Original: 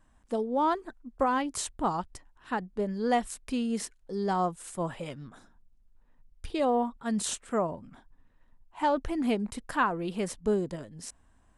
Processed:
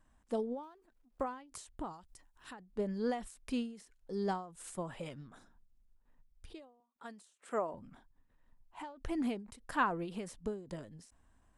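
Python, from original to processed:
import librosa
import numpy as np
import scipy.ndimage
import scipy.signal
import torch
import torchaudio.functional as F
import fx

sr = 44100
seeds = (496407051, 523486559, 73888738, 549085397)

y = fx.law_mismatch(x, sr, coded='A', at=(0.63, 1.21))
y = fx.high_shelf(y, sr, hz=4300.0, db=12.0, at=(1.93, 2.53))
y = fx.highpass(y, sr, hz=340.0, slope=12, at=(6.8, 7.74))
y = fx.end_taper(y, sr, db_per_s=110.0)
y = F.gain(torch.from_numpy(y), -4.5).numpy()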